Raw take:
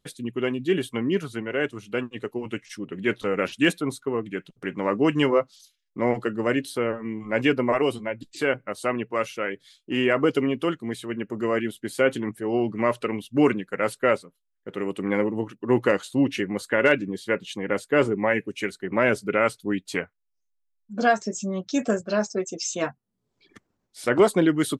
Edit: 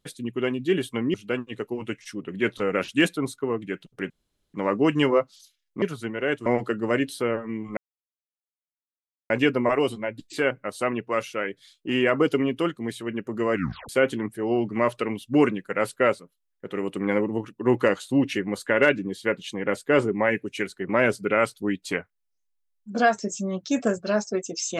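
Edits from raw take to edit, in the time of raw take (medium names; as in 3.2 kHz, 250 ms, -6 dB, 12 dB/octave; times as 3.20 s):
1.14–1.78 s: move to 6.02 s
4.74 s: insert room tone 0.44 s
7.33 s: insert silence 1.53 s
11.57 s: tape stop 0.35 s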